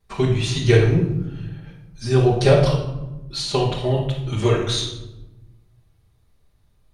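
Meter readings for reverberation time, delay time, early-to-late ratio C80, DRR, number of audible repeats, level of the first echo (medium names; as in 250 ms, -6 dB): 1.0 s, no echo, 8.0 dB, -8.0 dB, no echo, no echo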